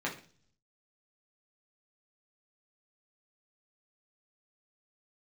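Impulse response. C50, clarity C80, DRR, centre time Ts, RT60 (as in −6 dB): 10.5 dB, 15.5 dB, −4.0 dB, 19 ms, 0.45 s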